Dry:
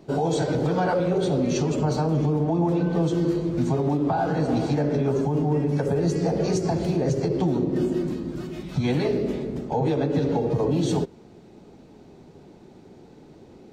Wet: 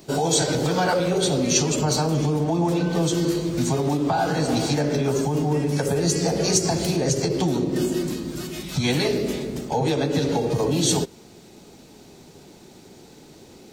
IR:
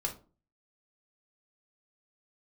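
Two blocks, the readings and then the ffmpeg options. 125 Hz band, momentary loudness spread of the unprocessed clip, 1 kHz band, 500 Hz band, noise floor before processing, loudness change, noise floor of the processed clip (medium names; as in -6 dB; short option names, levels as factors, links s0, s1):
0.0 dB, 4 LU, +2.0 dB, +1.0 dB, -49 dBFS, +1.5 dB, -48 dBFS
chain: -af "crystalizer=i=6.5:c=0"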